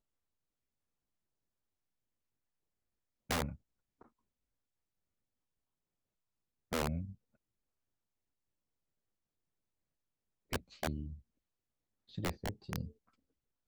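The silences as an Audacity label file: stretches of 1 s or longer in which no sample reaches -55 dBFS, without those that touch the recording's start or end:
4.060000	6.720000	silence
7.150000	10.520000	silence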